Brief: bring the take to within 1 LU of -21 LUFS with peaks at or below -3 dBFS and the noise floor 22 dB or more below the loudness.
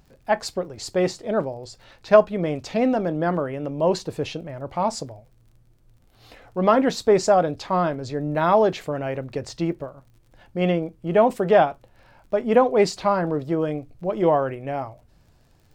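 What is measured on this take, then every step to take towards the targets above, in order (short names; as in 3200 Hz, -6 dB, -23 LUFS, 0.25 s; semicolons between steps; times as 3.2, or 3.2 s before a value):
ticks 40/s; loudness -22.5 LUFS; peak -2.0 dBFS; loudness target -21.0 LUFS
-> de-click; gain +1.5 dB; limiter -3 dBFS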